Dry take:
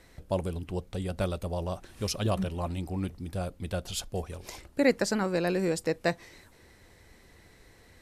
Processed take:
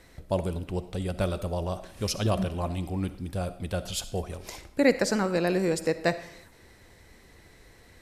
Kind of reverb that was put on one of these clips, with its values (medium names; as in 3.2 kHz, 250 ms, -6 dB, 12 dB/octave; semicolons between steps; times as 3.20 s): algorithmic reverb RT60 0.68 s, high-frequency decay 0.8×, pre-delay 20 ms, DRR 12.5 dB; trim +2 dB